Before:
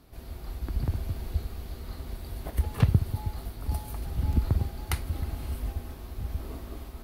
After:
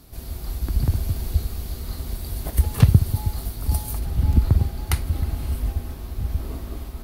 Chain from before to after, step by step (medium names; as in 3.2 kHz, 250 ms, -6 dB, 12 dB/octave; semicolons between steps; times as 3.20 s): tone controls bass +4 dB, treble +10 dB, from 3.98 s treble +3 dB; trim +4 dB